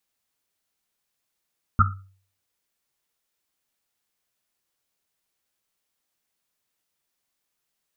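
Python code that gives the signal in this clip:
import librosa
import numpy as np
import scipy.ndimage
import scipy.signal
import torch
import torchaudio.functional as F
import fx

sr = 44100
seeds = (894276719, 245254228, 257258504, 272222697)

y = fx.risset_drum(sr, seeds[0], length_s=1.1, hz=96.0, decay_s=0.49, noise_hz=1300.0, noise_width_hz=170.0, noise_pct=50)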